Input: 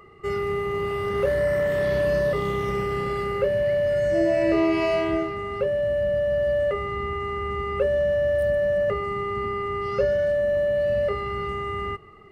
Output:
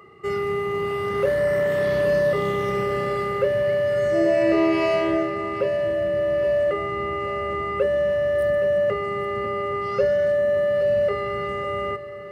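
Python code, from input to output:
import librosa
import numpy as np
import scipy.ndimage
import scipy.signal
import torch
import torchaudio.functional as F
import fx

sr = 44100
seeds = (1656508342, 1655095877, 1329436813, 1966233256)

p1 = scipy.signal.sosfilt(scipy.signal.butter(2, 110.0, 'highpass', fs=sr, output='sos'), x)
p2 = p1 + fx.echo_feedback(p1, sr, ms=822, feedback_pct=60, wet_db=-14.5, dry=0)
y = p2 * librosa.db_to_amplitude(1.5)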